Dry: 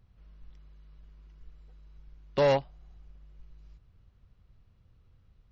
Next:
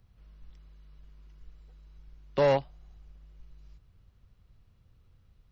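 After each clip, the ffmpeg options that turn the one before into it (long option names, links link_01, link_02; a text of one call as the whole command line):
ffmpeg -i in.wav -filter_complex "[0:a]highshelf=frequency=4500:gain=5.5,acrossover=split=190|2500[link_01][link_02][link_03];[link_03]alimiter=level_in=11.5dB:limit=-24dB:level=0:latency=1,volume=-11.5dB[link_04];[link_01][link_02][link_04]amix=inputs=3:normalize=0" out.wav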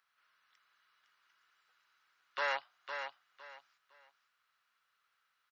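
ffmpeg -i in.wav -af "highpass=frequency=1400:width_type=q:width=2.9,aecho=1:1:508|1016|1524:0.447|0.112|0.0279,volume=-3.5dB" out.wav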